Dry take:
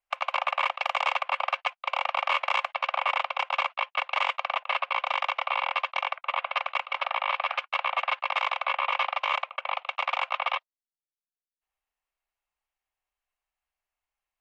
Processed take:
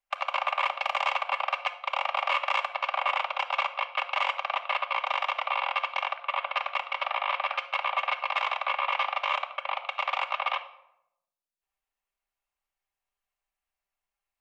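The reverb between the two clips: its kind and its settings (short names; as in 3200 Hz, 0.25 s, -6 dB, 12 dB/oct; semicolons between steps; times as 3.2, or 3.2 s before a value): shoebox room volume 2400 m³, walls furnished, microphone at 1.2 m; gain -1.5 dB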